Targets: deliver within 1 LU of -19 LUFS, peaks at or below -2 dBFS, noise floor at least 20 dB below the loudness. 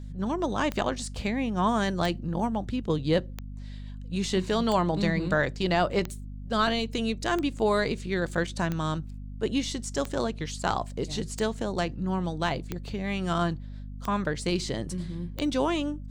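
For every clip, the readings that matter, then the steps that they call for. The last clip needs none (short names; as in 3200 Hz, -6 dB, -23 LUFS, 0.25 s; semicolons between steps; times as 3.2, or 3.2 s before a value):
clicks 12; hum 50 Hz; harmonics up to 250 Hz; hum level -36 dBFS; loudness -28.5 LUFS; peak -12.5 dBFS; loudness target -19.0 LUFS
-> de-click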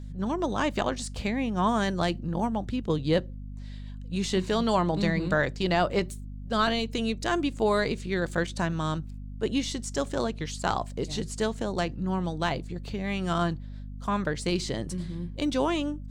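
clicks 0; hum 50 Hz; harmonics up to 250 Hz; hum level -36 dBFS
-> notches 50/100/150/200/250 Hz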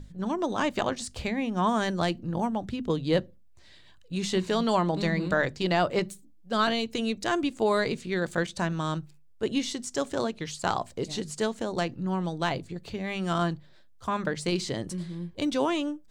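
hum none; loudness -29.0 LUFS; peak -12.5 dBFS; loudness target -19.0 LUFS
-> gain +10 dB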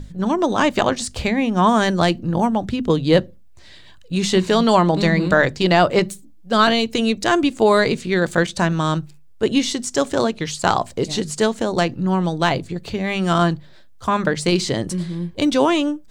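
loudness -19.0 LUFS; peak -2.5 dBFS; noise floor -43 dBFS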